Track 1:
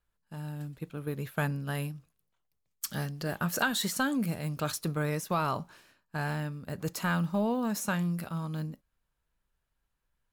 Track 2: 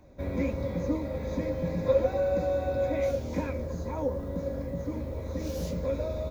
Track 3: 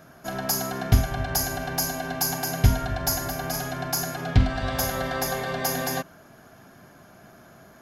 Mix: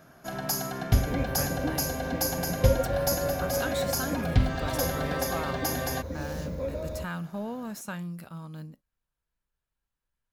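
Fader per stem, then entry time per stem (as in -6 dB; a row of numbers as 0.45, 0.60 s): -6.0, -2.5, -4.0 dB; 0.00, 0.75, 0.00 s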